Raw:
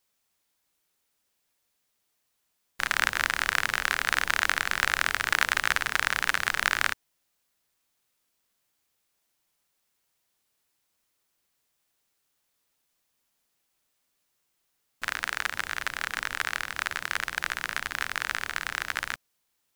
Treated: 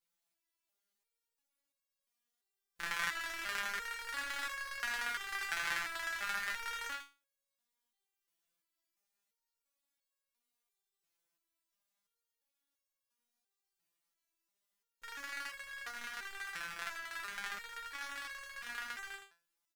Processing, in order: delay 81 ms -6.5 dB; resonator arpeggio 2.9 Hz 170–550 Hz; trim +1 dB

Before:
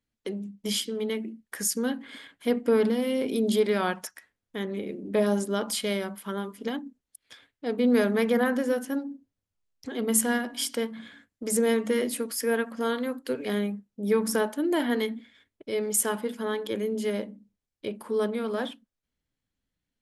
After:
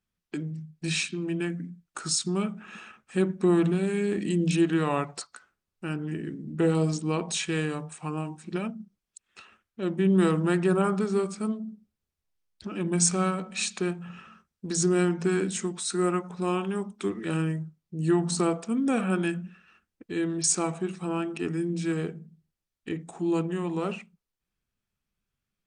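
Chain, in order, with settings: tape speed -22%

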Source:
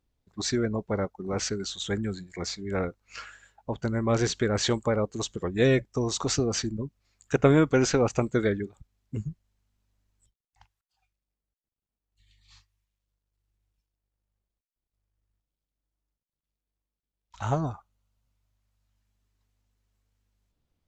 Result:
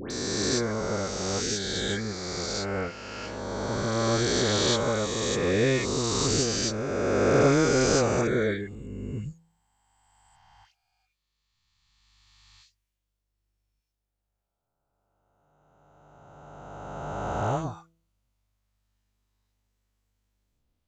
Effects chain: reverse spectral sustain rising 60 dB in 2.85 s; de-hum 165.3 Hz, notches 4; phase dispersion highs, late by 108 ms, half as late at 1.6 kHz; trim -3.5 dB

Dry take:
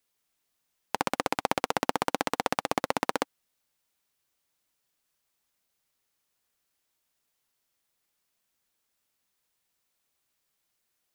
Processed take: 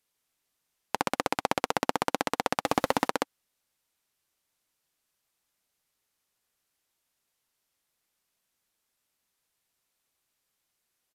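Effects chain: resampled via 32 kHz; 2.65–3.08 s: power-law waveshaper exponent 0.7

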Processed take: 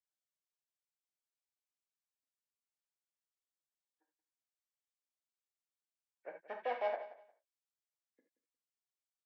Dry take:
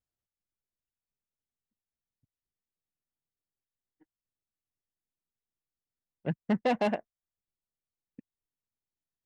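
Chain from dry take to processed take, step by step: knee-point frequency compression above 1.5 kHz 1.5:1; high-pass 490 Hz 24 dB/octave; feedback delay 178 ms, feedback 20%, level -16 dB; gated-style reverb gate 100 ms flat, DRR 3.5 dB; trim -9 dB

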